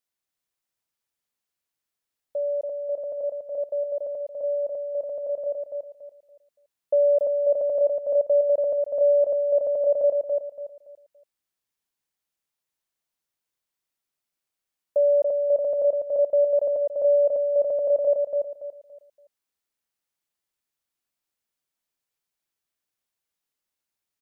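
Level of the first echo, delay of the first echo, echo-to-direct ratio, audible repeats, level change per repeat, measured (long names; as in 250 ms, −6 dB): −4.0 dB, 284 ms, −3.5 dB, 3, −10.5 dB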